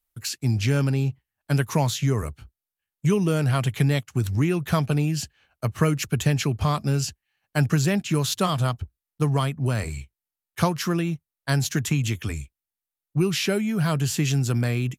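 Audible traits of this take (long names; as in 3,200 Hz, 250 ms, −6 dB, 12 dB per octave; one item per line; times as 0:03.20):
background noise floor −90 dBFS
spectral slope −5.5 dB per octave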